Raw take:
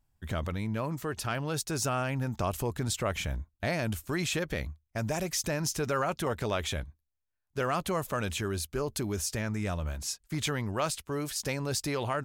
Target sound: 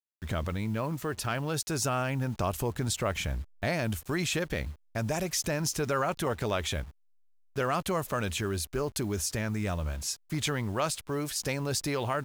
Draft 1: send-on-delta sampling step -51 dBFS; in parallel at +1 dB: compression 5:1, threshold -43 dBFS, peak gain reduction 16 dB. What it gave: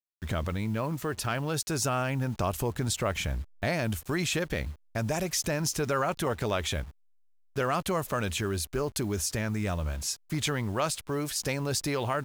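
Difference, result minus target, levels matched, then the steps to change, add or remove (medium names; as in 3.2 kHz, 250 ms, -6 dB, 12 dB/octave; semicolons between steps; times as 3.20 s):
compression: peak gain reduction -6.5 dB
change: compression 5:1, threshold -51 dBFS, peak gain reduction 22.5 dB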